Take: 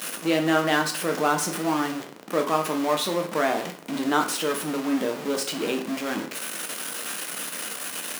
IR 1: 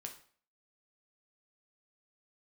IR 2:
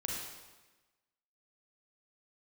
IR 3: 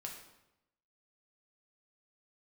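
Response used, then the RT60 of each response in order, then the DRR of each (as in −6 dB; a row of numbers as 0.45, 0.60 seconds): 1; 0.50, 1.2, 0.90 seconds; 3.0, −2.5, −0.5 decibels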